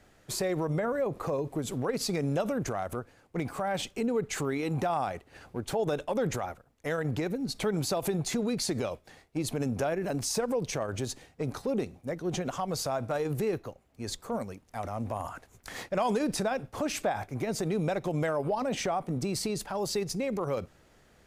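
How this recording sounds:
background noise floor −62 dBFS
spectral slope −5.0 dB per octave

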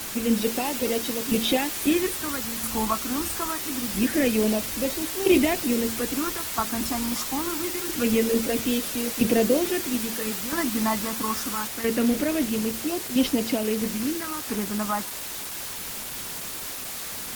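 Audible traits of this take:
tremolo saw down 0.76 Hz, depth 75%
phaser sweep stages 4, 0.25 Hz, lowest notch 490–1,400 Hz
a quantiser's noise floor 6 bits, dither triangular
Opus

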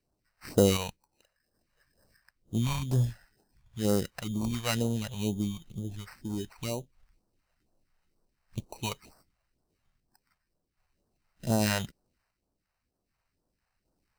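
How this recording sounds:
aliases and images of a low sample rate 3,400 Hz, jitter 0%
sample-and-hold tremolo 1.3 Hz
phaser sweep stages 2, 2.1 Hz, lowest notch 280–2,200 Hz

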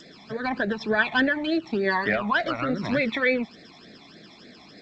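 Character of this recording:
a quantiser's noise floor 12 bits, dither none
phaser sweep stages 12, 3.4 Hz, lowest notch 480–1,000 Hz
G.722

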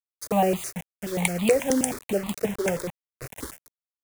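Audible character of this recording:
a quantiser's noise floor 6 bits, dither none
notches that jump at a steady rate 9.4 Hz 690–1,600 Hz

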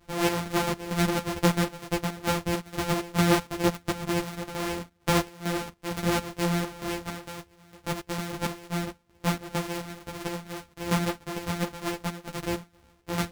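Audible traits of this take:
a buzz of ramps at a fixed pitch in blocks of 256 samples
chopped level 2.2 Hz, depth 65%, duty 60%
a shimmering, thickened sound

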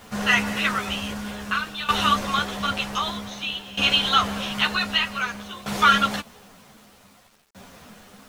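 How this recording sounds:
tremolo saw down 0.53 Hz, depth 85%
a quantiser's noise floor 10 bits, dither none
a shimmering, thickened sound

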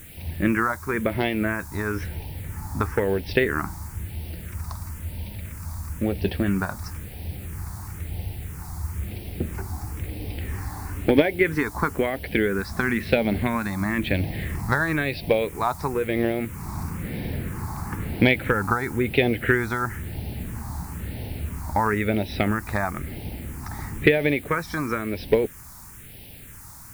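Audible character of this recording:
a quantiser's noise floor 8 bits, dither triangular
phaser sweep stages 4, 1 Hz, lowest notch 480–1,200 Hz

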